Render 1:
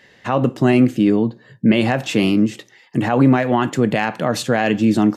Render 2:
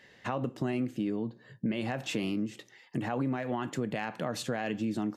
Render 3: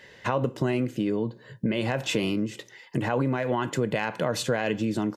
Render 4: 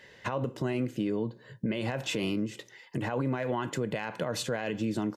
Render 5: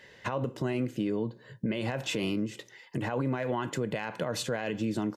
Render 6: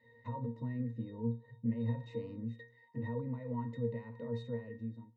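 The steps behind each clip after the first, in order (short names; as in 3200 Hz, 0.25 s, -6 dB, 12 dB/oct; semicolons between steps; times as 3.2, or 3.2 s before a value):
compressor 3:1, threshold -24 dBFS, peak gain reduction 11.5 dB; gain -7.5 dB
comb 2 ms, depth 35%; gain +7 dB
limiter -17.5 dBFS, peak gain reduction 6 dB; gain -3.5 dB
nothing audible
ending faded out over 0.72 s; octave resonator A#, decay 0.25 s; gain +4.5 dB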